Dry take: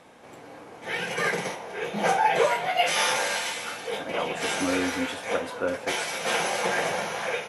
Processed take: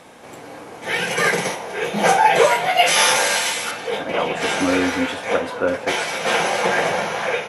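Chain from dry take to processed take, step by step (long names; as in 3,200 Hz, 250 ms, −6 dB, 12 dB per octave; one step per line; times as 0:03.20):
high-shelf EQ 5,400 Hz +5 dB, from 0:03.71 −7 dB
level +7.5 dB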